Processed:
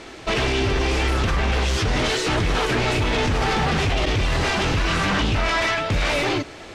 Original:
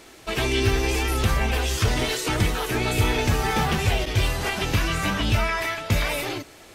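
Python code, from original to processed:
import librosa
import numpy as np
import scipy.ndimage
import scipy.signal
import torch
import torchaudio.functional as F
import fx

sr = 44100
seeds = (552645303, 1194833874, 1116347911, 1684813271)

p1 = fx.over_compress(x, sr, threshold_db=-25.0, ratio=-0.5)
p2 = x + (p1 * librosa.db_to_amplitude(3.0))
p3 = 10.0 ** (-15.0 / 20.0) * (np.abs((p2 / 10.0 ** (-15.0 / 20.0) + 3.0) % 4.0 - 2.0) - 1.0)
y = fx.air_absorb(p3, sr, metres=95.0)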